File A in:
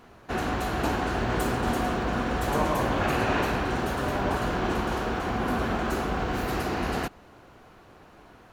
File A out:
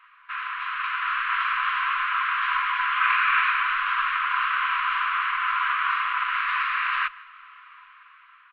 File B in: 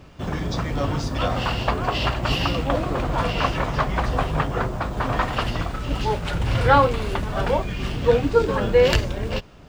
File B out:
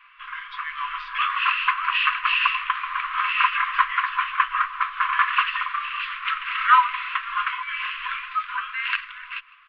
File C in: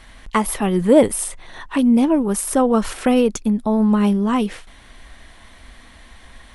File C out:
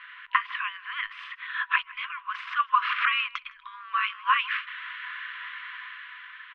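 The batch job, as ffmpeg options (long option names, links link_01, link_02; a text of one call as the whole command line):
ffmpeg -i in.wav -filter_complex "[0:a]asplit=2[link_01][link_02];[link_02]acompressor=threshold=-27dB:ratio=8,volume=0dB[link_03];[link_01][link_03]amix=inputs=2:normalize=0,afftfilt=real='re*(1-between(b*sr/4096,150,1100))':imag='im*(1-between(b*sr/4096,150,1100))':win_size=4096:overlap=0.75,lowshelf=frequency=410:gain=-11.5,dynaudnorm=framelen=290:gausssize=7:maxgain=8dB,bandreject=frequency=60:width_type=h:width=6,bandreject=frequency=120:width_type=h:width=6,bandreject=frequency=180:width_type=h:width=6,bandreject=frequency=240:width_type=h:width=6,asplit=2[link_04][link_05];[link_05]adelay=157.4,volume=-21dB,highshelf=frequency=4000:gain=-3.54[link_06];[link_04][link_06]amix=inputs=2:normalize=0,highpass=frequency=230:width_type=q:width=0.5412,highpass=frequency=230:width_type=q:width=1.307,lowpass=frequency=3000:width_type=q:width=0.5176,lowpass=frequency=3000:width_type=q:width=0.7071,lowpass=frequency=3000:width_type=q:width=1.932,afreqshift=-120" out.wav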